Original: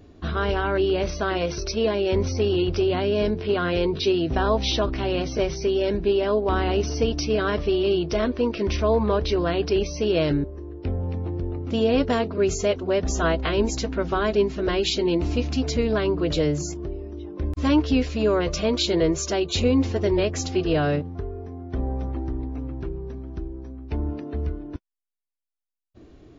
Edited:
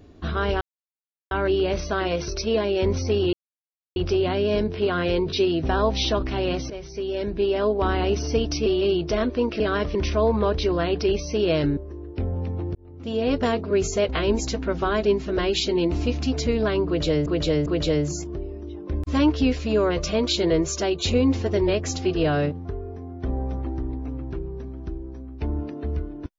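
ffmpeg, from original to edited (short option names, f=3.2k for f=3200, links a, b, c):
-filter_complex "[0:a]asplit=11[a][b][c][d][e][f][g][h][i][j][k];[a]atrim=end=0.61,asetpts=PTS-STARTPTS,afade=t=out:st=0.606:d=0.004:c=hsin,apad=pad_dur=0.7[l];[b]atrim=start=0.61:end=2.63,asetpts=PTS-STARTPTS,afade=t=in:d=0.004:c=hsin,afade=t=out:st=2.016:d=0.004:c=hsin,apad=pad_dur=0.63[m];[c]atrim=start=2.63:end=5.37,asetpts=PTS-STARTPTS,afade=t=in:d=0.004:c=hsin,afade=t=out:st=2.736:d=0.004:c=hsin:silence=0.199526[n];[d]atrim=start=5.37:end=7.332,asetpts=PTS-STARTPTS,afade=t=in:d=0.93:silence=0.199526[o];[e]atrim=start=7.678:end=8.622[p];[f]atrim=start=7.328:end=7.682[q];[g]atrim=start=8.618:end=11.42,asetpts=PTS-STARTPTS,afade=t=out:st=2.798:d=0.004:c=hsin[r];[h]atrim=start=11.42:end=12.762,asetpts=PTS-STARTPTS,afade=t=in:d=0.7[s];[i]atrim=start=13.388:end=16.562[t];[j]atrim=start=16.158:end=16.562[u];[k]atrim=start=16.158[v];[l][m][n][o]concat=n=4:v=0:a=1[w];[w][p]acrossfade=d=0.004:c1=hsin:c2=hsin[x];[x][q]acrossfade=d=0.004:c1=hsin:c2=hsin[y];[r][s]concat=n=2:v=0:a=1[z];[y][z]acrossfade=d=0.004:c1=hsin:c2=hsin[aa];[aa][t]acrossfade=d=0.004:c1=hsin:c2=hsin[ab];[ab][u]acrossfade=d=0.004:c1=hsin:c2=hsin[ac];[ac][v]acrossfade=d=0.004:c1=hsin:c2=hsin"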